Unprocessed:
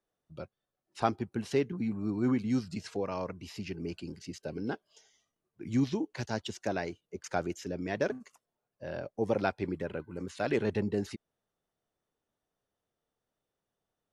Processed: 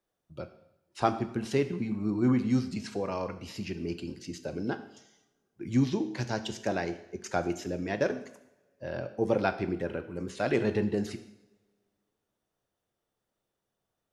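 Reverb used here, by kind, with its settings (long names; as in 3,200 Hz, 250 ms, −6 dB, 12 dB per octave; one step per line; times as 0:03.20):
coupled-rooms reverb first 0.74 s, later 2 s, from −22 dB, DRR 8.5 dB
level +2 dB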